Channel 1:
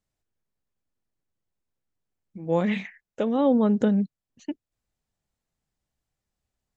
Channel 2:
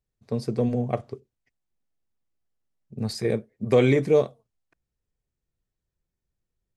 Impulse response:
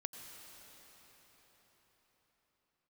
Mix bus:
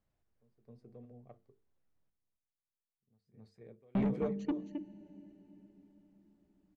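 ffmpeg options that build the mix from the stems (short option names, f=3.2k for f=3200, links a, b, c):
-filter_complex "[0:a]volume=1dB,asplit=3[a][b][c];[a]atrim=end=2.1,asetpts=PTS-STARTPTS,afade=t=out:st=2.096:d=0.004:c=hsin[d];[b]atrim=start=2.1:end=3.95,asetpts=PTS-STARTPTS,volume=0[e];[c]atrim=start=3.95,asetpts=PTS-STARTPTS,afade=t=in:d=0.004:c=hsin[f];[d][e][f]concat=n=3:v=0:a=1,asplit=4[g][h][i][j];[h]volume=-7.5dB[k];[i]volume=-8dB[l];[1:a]adelay=100,volume=-11.5dB,asplit=2[m][n];[n]volume=-17dB[o];[j]apad=whole_len=302609[p];[m][p]sidechaingate=range=-34dB:threshold=-54dB:ratio=16:detection=peak[q];[2:a]atrim=start_sample=2205[r];[k][r]afir=irnorm=-1:irlink=0[s];[l][o]amix=inputs=2:normalize=0,aecho=0:1:265:1[t];[g][q][s][t]amix=inputs=4:normalize=0,lowpass=f=1.4k:p=1,bandreject=f=50:t=h:w=6,bandreject=f=100:t=h:w=6,bandreject=f=150:t=h:w=6,bandreject=f=200:t=h:w=6,bandreject=f=250:t=h:w=6,bandreject=f=300:t=h:w=6,bandreject=f=350:t=h:w=6,bandreject=f=400:t=h:w=6,bandreject=f=450:t=h:w=6,asoftclip=type=tanh:threshold=-26.5dB"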